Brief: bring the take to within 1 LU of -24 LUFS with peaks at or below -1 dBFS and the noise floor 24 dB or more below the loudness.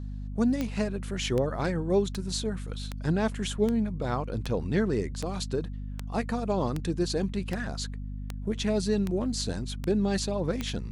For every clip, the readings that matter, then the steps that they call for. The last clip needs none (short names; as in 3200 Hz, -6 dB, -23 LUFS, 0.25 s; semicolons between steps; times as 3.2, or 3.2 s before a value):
clicks 14; hum 50 Hz; harmonics up to 250 Hz; hum level -33 dBFS; loudness -30.0 LUFS; peak -13.5 dBFS; loudness target -24.0 LUFS
-> de-click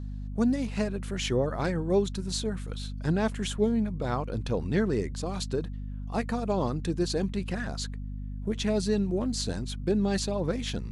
clicks 0; hum 50 Hz; harmonics up to 250 Hz; hum level -33 dBFS
-> de-hum 50 Hz, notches 5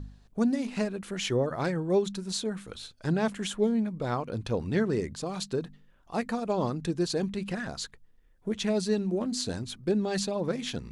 hum none; loudness -30.5 LUFS; peak -14.5 dBFS; loudness target -24.0 LUFS
-> gain +6.5 dB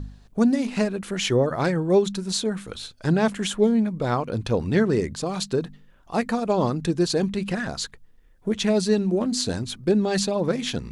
loudness -24.0 LUFS; peak -8.0 dBFS; noise floor -53 dBFS